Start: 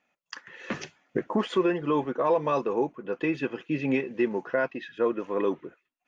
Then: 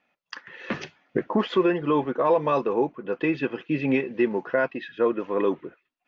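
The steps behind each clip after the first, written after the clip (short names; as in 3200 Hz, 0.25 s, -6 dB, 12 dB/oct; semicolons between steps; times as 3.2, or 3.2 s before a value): LPF 5000 Hz 24 dB/oct; gain +3 dB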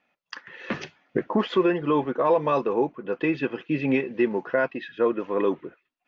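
nothing audible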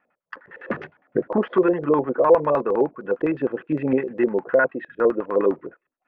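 LFO low-pass square 9.8 Hz 550–1500 Hz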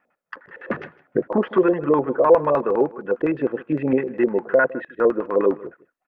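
echo 0.157 s -20 dB; gain +1 dB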